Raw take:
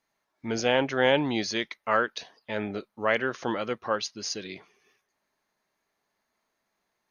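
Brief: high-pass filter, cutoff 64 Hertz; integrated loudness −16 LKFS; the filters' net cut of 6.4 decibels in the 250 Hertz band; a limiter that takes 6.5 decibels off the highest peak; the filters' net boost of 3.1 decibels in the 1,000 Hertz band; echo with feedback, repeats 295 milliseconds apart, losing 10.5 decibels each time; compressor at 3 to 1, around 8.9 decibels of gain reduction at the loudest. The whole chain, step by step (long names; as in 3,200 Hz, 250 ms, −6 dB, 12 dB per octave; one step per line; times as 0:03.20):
high-pass filter 64 Hz
parametric band 250 Hz −8.5 dB
parametric band 1,000 Hz +4.5 dB
downward compressor 3 to 1, threshold −28 dBFS
brickwall limiter −21.5 dBFS
repeating echo 295 ms, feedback 30%, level −10.5 dB
level +19 dB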